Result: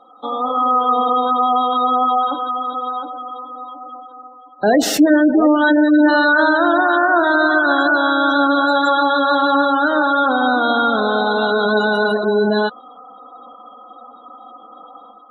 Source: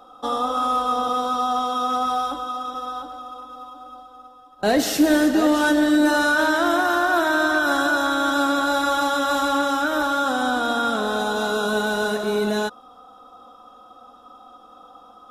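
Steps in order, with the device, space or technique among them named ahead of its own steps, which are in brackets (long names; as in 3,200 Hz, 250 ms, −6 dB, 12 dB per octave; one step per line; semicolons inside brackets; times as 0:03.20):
noise-suppressed video call (high-pass filter 150 Hz 12 dB per octave; gate on every frequency bin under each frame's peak −20 dB strong; automatic gain control gain up to 7 dB; Opus 32 kbit/s 48,000 Hz)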